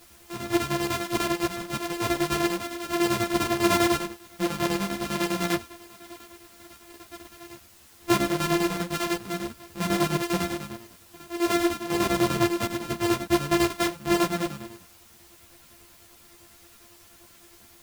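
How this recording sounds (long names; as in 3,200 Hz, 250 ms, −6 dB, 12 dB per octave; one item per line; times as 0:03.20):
a buzz of ramps at a fixed pitch in blocks of 128 samples
chopped level 10 Hz, depth 65%, duty 60%
a quantiser's noise floor 10 bits, dither triangular
a shimmering, thickened sound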